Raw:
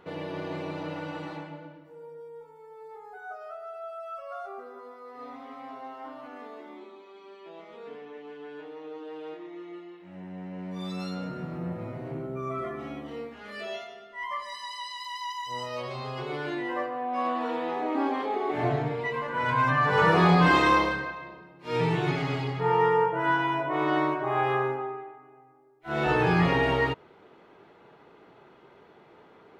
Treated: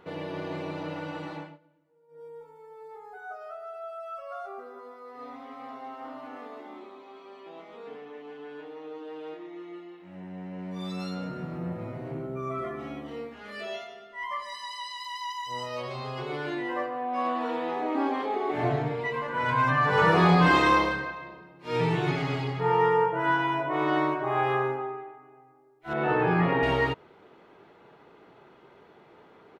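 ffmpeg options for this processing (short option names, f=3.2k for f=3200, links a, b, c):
-filter_complex "[0:a]asplit=2[a][b];[b]afade=t=in:st=5.18:d=0.01,afade=t=out:st=5.99:d=0.01,aecho=0:1:410|820|1230|1640|2050|2460|2870|3280|3690|4100|4510|4920:0.398107|0.29858|0.223935|0.167951|0.125964|0.0944727|0.0708545|0.0531409|0.0398557|0.0298918|0.0224188|0.0168141[c];[a][c]amix=inputs=2:normalize=0,asettb=1/sr,asplit=3[d][e][f];[d]atrim=end=25.934[g];[e]atrim=start=25.93:end=26.63,asetpts=PTS-STARTPTS,afade=t=in:d=0.004:c=qsin,afade=t=out:st=0.696:d=0.004:c=qsin,highpass=140,lowpass=2.1k[h];[f]atrim=start=26.626[i];[g][h]acrossfade=d=0.004:c1=hsin:c2=qsin[j];[j][i]acrossfade=d=0.004:c1=qsin:c2=hsin,asplit=3[k][l][m];[k]atrim=end=1.59,asetpts=PTS-STARTPTS,afade=t=out:st=1.42:d=0.17:silence=0.112202[n];[l]atrim=start=1.59:end=2.08,asetpts=PTS-STARTPTS,volume=-19dB[o];[m]atrim=start=2.08,asetpts=PTS-STARTPTS,afade=t=in:d=0.17:silence=0.112202[p];[n][o][p]concat=n=3:v=0:a=1"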